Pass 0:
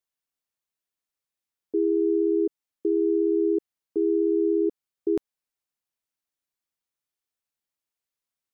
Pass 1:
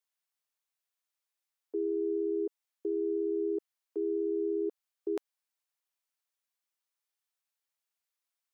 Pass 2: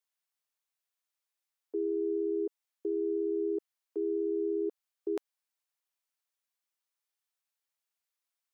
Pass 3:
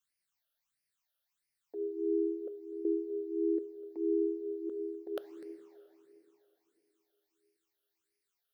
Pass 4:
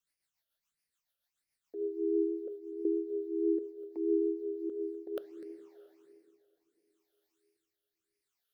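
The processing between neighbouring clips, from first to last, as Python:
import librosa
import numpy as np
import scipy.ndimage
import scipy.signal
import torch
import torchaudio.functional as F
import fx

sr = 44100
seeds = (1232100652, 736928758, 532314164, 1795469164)

y1 = scipy.signal.sosfilt(scipy.signal.butter(2, 600.0, 'highpass', fs=sr, output='sos'), x)
y2 = y1
y3 = y2 + 10.0 ** (-17.0 / 20.0) * np.pad(y2, (int(250 * sr / 1000.0), 0))[:len(y2)]
y3 = fx.rev_plate(y3, sr, seeds[0], rt60_s=3.6, hf_ratio=0.9, predelay_ms=0, drr_db=10.5)
y3 = fx.phaser_stages(y3, sr, stages=8, low_hz=280.0, high_hz=1100.0, hz=1.5, feedback_pct=45)
y3 = y3 * librosa.db_to_amplitude(4.5)
y4 = fx.rotary_switch(y3, sr, hz=7.0, then_hz=0.75, switch_at_s=4.19)
y4 = y4 * librosa.db_to_amplitude(2.5)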